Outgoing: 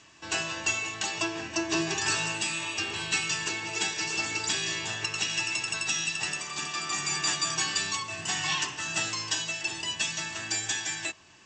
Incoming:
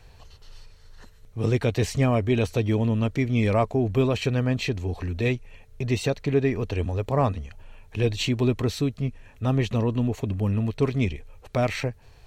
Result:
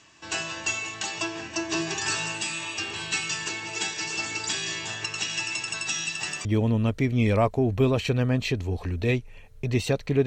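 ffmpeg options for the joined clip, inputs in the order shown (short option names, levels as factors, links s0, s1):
-filter_complex "[0:a]asettb=1/sr,asplit=3[s0][s1][s2];[s0]atrim=end=5.974[s3];[s1]atrim=start=5.97:end=6.45,asetpts=PTS-STARTPTS,afade=t=in:d=0.004:c=qsin,afade=t=out:st=0.476:d=0.004:c=qsin,aeval=exprs='val(0)*gte(abs(val(0)),0.00188)':c=same[s4];[s2]atrim=start=6.446[s5];[s3][s4]acrossfade=d=0.004:c1=hsin:c2=qsin[s6];[s6][s5]acrossfade=d=0.004:c1=qsin:c2=hsin,apad=whole_dur=10.26,atrim=end=10.26,atrim=end=6.452[s7];[1:a]atrim=start=2.618:end=6.43[s8];[s7][s8]acrossfade=d=0.004:c1=hsin:c2=hsin"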